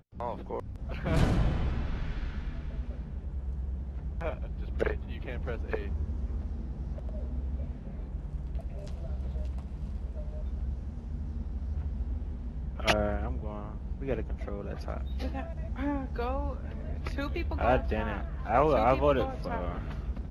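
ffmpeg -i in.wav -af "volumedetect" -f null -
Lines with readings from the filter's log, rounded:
mean_volume: -31.9 dB
max_volume: -11.0 dB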